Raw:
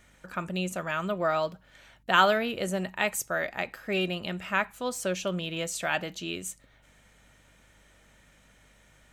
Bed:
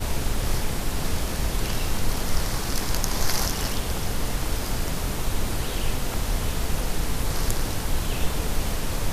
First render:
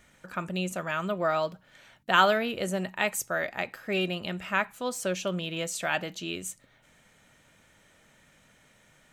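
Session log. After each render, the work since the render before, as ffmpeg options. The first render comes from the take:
-af "bandreject=f=50:t=h:w=4,bandreject=f=100:t=h:w=4"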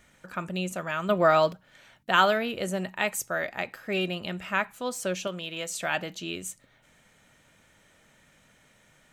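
-filter_complex "[0:a]asettb=1/sr,asplit=3[s0][s1][s2];[s0]atrim=end=5.274[s3];[s1]atrim=start=5.27:end=5.7,asetpts=PTS-STARTPTS,afade=t=in:d=0.004:c=qsin,afade=t=out:st=0.426:d=0.004:c=qsin,lowshelf=f=340:g=-9[s4];[s2]atrim=start=5.696[s5];[s3][s4]acrossfade=d=0.004:c1=hsin:c2=qsin[s6];[s6][s5]acrossfade=d=0.004:c1=qsin:c2=hsin,asplit=3[s7][s8][s9];[s7]atrim=end=1.092[s10];[s8]atrim=start=1.088:end=1.532,asetpts=PTS-STARTPTS,volume=2.11[s11];[s9]atrim=start=1.528[s12];[s10][s11]acrossfade=d=0.004:c1=hsin:c2=hsin[s13];[s13][s12]acrossfade=d=0.004:c1=hsin:c2=hsin"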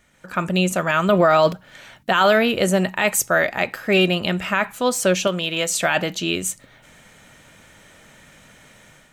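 -af "alimiter=limit=0.119:level=0:latency=1:release=16,dynaudnorm=f=120:g=5:m=3.98"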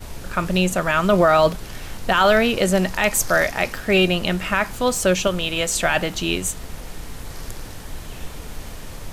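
-filter_complex "[1:a]volume=0.376[s0];[0:a][s0]amix=inputs=2:normalize=0"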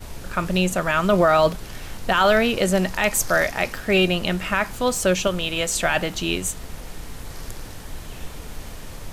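-af "volume=0.841"

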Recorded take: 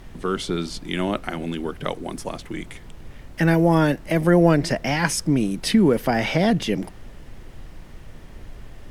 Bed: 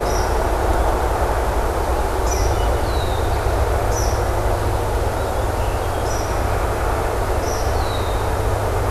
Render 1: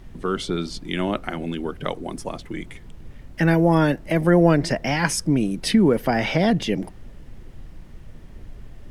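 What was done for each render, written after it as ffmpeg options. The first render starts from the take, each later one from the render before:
-af "afftdn=nr=6:nf=-42"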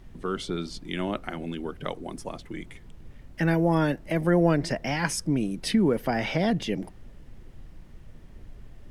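-af "volume=0.531"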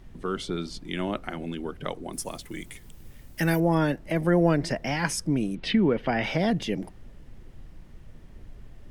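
-filter_complex "[0:a]asettb=1/sr,asplit=3[s0][s1][s2];[s0]atrim=end=2.134[s3];[s1]atrim=start=2.13:end=3.6,asetpts=PTS-STARTPTS,afade=t=in:d=0.004:c=qsin,afade=t=out:st=1.466:d=0.004:c=qsin,aemphasis=mode=production:type=75fm[s4];[s2]atrim=start=3.596[s5];[s3][s4]acrossfade=d=0.004:c1=hsin:c2=qsin[s6];[s6][s5]acrossfade=d=0.004:c1=qsin:c2=hsin,asettb=1/sr,asplit=3[s7][s8][s9];[s7]atrim=end=5.554[s10];[s8]atrim=start=5.55:end=6.24,asetpts=PTS-STARTPTS,afade=t=in:d=0.004:c=qsin,afade=t=out:st=0.686:d=0.004:c=qsin,lowpass=f=3100:t=q:w=1.8[s11];[s9]atrim=start=6.236[s12];[s10][s11]acrossfade=d=0.004:c1=hsin:c2=qsin[s13];[s13][s12]acrossfade=d=0.004:c1=qsin:c2=hsin"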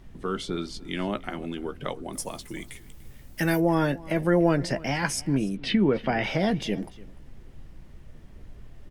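-filter_complex "[0:a]asplit=2[s0][s1];[s1]adelay=15,volume=0.282[s2];[s0][s2]amix=inputs=2:normalize=0,aecho=1:1:294:0.0891"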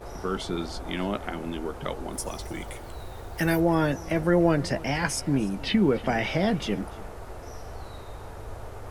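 -filter_complex "[1:a]volume=0.0891[s0];[0:a][s0]amix=inputs=2:normalize=0"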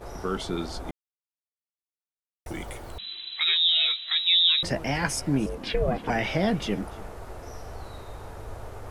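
-filter_complex "[0:a]asettb=1/sr,asplit=3[s0][s1][s2];[s0]atrim=end=2.984[s3];[s1]atrim=start=2.98:end=4.63,asetpts=PTS-STARTPTS,afade=t=in:d=0.004:c=qsin,afade=t=out:st=1.646:d=0.004:c=qsin,lowpass=f=3400:t=q:w=0.5098,lowpass=f=3400:t=q:w=0.6013,lowpass=f=3400:t=q:w=0.9,lowpass=f=3400:t=q:w=2.563,afreqshift=-4000[s4];[s2]atrim=start=4.626[s5];[s3][s4]acrossfade=d=0.004:c1=hsin:c2=qsin[s6];[s6][s5]acrossfade=d=0.004:c1=qsin:c2=hsin,asettb=1/sr,asplit=3[s7][s8][s9];[s7]atrim=end=5.464[s10];[s8]atrim=start=5.46:end=6.1,asetpts=PTS-STARTPTS,afade=t=in:d=0.004:c=qsin,afade=t=out:st=0.636:d=0.004:c=qsin,aeval=exprs='val(0)*sin(2*PI*250*n/s)':c=same[s11];[s9]atrim=start=6.096[s12];[s10][s11]acrossfade=d=0.004:c1=hsin:c2=qsin[s13];[s13][s12]acrossfade=d=0.004:c1=qsin:c2=hsin,asplit=3[s14][s15][s16];[s14]atrim=end=0.91,asetpts=PTS-STARTPTS,afade=t=out:st=0.906:d=0.004:c=hsin[s17];[s15]atrim=start=0.91:end=2.46,asetpts=PTS-STARTPTS,volume=0[s18];[s16]atrim=start=2.46,asetpts=PTS-STARTPTS,afade=t=in:d=0.004:c=hsin[s19];[s17][s18][s19]concat=n=3:v=0:a=1"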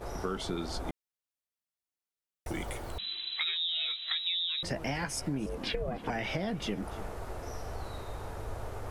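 -af "alimiter=limit=0.188:level=0:latency=1:release=486,acompressor=threshold=0.0316:ratio=6"

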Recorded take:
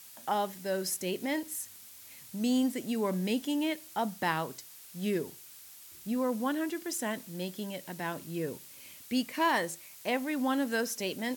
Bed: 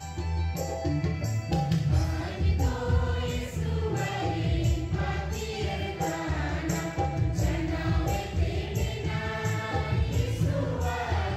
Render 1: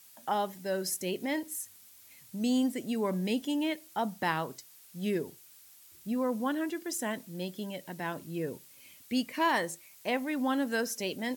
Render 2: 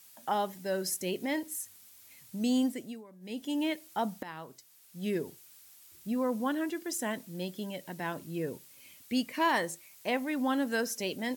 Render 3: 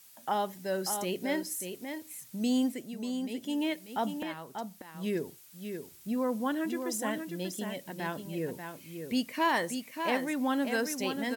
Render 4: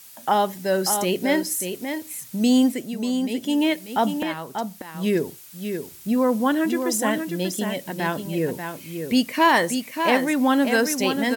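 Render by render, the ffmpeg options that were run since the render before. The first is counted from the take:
-af "afftdn=nr=6:nf=-51"
-filter_complex "[0:a]asplit=4[s0][s1][s2][s3];[s0]atrim=end=3.04,asetpts=PTS-STARTPTS,afade=t=out:st=2.64:d=0.4:silence=0.0749894[s4];[s1]atrim=start=3.04:end=3.2,asetpts=PTS-STARTPTS,volume=0.075[s5];[s2]atrim=start=3.2:end=4.23,asetpts=PTS-STARTPTS,afade=t=in:d=0.4:silence=0.0749894,afade=t=out:st=1.026:d=0.004:c=hsin:silence=0.149624[s6];[s3]atrim=start=4.23,asetpts=PTS-STARTPTS,afade=t=in:d=1.04:silence=0.149624[s7];[s4][s5][s6][s7]concat=n=4:v=0:a=1"
-af "aecho=1:1:589:0.447"
-af "volume=3.35"

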